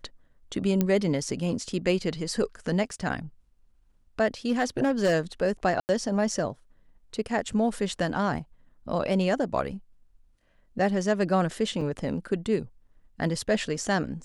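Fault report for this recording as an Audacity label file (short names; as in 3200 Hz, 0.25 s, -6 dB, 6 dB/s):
0.810000	0.810000	pop -11 dBFS
4.490000	5.140000	clipped -18 dBFS
5.800000	5.890000	gap 89 ms
11.810000	11.810000	gap 3.5 ms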